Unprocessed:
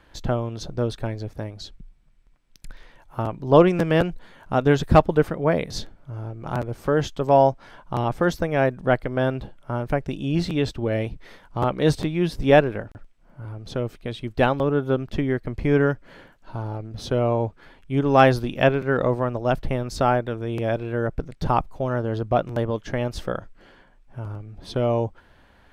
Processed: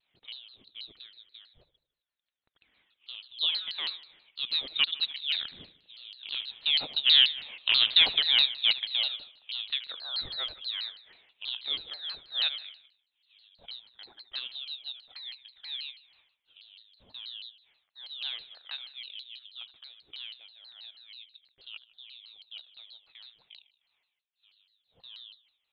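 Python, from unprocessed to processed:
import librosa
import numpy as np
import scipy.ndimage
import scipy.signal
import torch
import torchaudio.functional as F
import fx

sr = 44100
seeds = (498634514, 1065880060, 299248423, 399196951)

p1 = fx.doppler_pass(x, sr, speed_mps=11, closest_m=3.6, pass_at_s=7.84)
p2 = scipy.signal.sosfilt(scipy.signal.butter(4, 200.0, 'highpass', fs=sr, output='sos'), p1)
p3 = fx.rider(p2, sr, range_db=5, speed_s=2.0)
p4 = p2 + (p3 * librosa.db_to_amplitude(2.5))
p5 = fx.clip_asym(p4, sr, top_db=-15.0, bottom_db=-7.5)
p6 = fx.harmonic_tremolo(p5, sr, hz=5.9, depth_pct=50, crossover_hz=550.0)
p7 = p6 + fx.echo_feedback(p6, sr, ms=77, feedback_pct=50, wet_db=-15.0, dry=0)
p8 = fx.freq_invert(p7, sr, carrier_hz=4000)
y = fx.vibrato_shape(p8, sr, shape='saw_down', rate_hz=6.2, depth_cents=250.0)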